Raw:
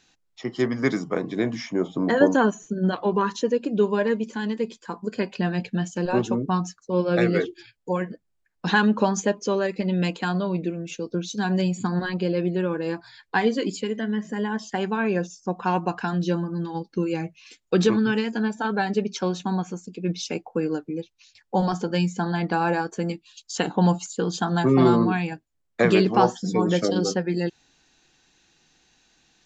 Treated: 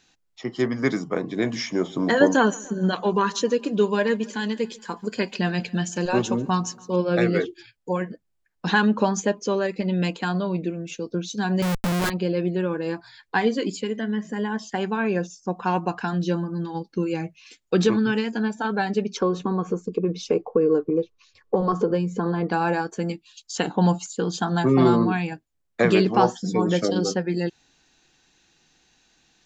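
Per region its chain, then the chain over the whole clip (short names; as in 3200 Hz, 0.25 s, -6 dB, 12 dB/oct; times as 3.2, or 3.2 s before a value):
1.42–6.96 high shelf 2000 Hz +8 dB + feedback echo 0.142 s, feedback 59%, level -23 dB
11.62–12.1 expander -31 dBFS + low shelf 110 Hz +11 dB + Schmitt trigger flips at -29 dBFS
19.17–22.49 tilt -2 dB/oct + compressor 4:1, threshold -25 dBFS + small resonant body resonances 450/1100 Hz, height 16 dB, ringing for 25 ms
whole clip: dry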